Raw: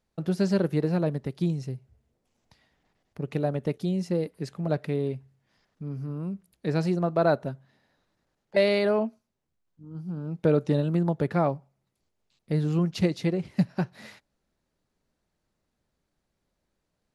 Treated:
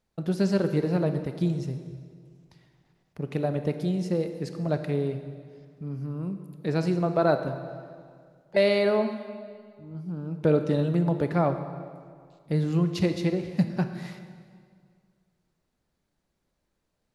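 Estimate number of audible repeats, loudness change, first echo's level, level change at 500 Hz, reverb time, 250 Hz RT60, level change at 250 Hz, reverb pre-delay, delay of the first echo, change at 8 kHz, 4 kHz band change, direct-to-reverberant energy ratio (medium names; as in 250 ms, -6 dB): no echo, +0.5 dB, no echo, +0.5 dB, 2.0 s, 2.1 s, +0.5 dB, 24 ms, no echo, no reading, +0.5 dB, 8.0 dB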